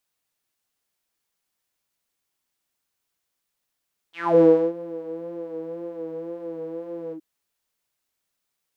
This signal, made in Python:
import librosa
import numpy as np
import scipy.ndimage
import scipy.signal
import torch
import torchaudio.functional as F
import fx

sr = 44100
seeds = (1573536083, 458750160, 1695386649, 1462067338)

y = fx.sub_patch_vibrato(sr, seeds[0], note=64, wave='triangle', wave2='saw', interval_st=-12, detune_cents=23, level2_db=-0.5, sub_db=-15.0, noise_db=-30.0, kind='bandpass', cutoff_hz=300.0, q=8.4, env_oct=3.5, env_decay_s=0.21, env_sustain_pct=20, attack_ms=279.0, decay_s=0.32, sustain_db=-20.5, release_s=0.08, note_s=2.99, lfo_hz=1.9, vibrato_cents=48)